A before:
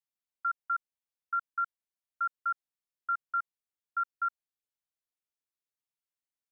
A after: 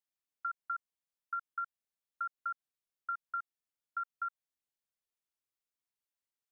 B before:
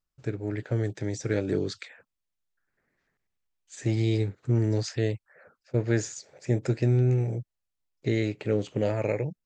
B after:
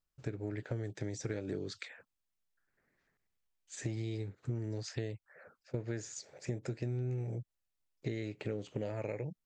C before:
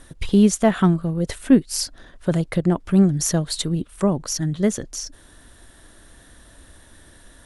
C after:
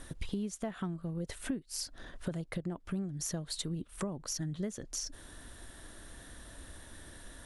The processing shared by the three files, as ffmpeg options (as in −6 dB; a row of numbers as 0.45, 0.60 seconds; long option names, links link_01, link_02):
-af "acompressor=threshold=-32dB:ratio=10,volume=-2dB"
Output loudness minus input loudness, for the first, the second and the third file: −6.5, −12.0, −18.0 LU